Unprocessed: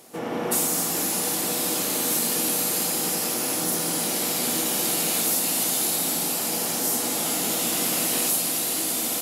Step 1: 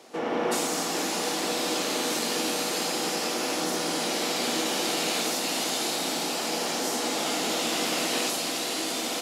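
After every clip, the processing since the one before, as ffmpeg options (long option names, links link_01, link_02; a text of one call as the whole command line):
ffmpeg -i in.wav -filter_complex "[0:a]acrossover=split=230 6600:gain=0.224 1 0.1[link_01][link_02][link_03];[link_01][link_02][link_03]amix=inputs=3:normalize=0,volume=2dB" out.wav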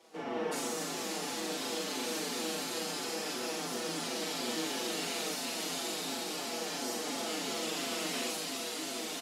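ffmpeg -i in.wav -filter_complex "[0:a]asplit=2[link_01][link_02];[link_02]aecho=0:1:40.82|268.2:0.708|0.355[link_03];[link_01][link_03]amix=inputs=2:normalize=0,asplit=2[link_04][link_05];[link_05]adelay=5.6,afreqshift=-2.9[link_06];[link_04][link_06]amix=inputs=2:normalize=1,volume=-7.5dB" out.wav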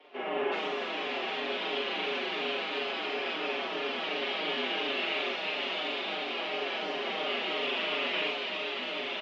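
ffmpeg -i in.wav -af "highpass=frequency=410:width_type=q:width=0.5412,highpass=frequency=410:width_type=q:width=1.307,lowpass=frequency=3500:width_type=q:width=0.5176,lowpass=frequency=3500:width_type=q:width=0.7071,lowpass=frequency=3500:width_type=q:width=1.932,afreqshift=-69,aexciter=amount=1.6:drive=5:freq=2300,volume=5.5dB" out.wav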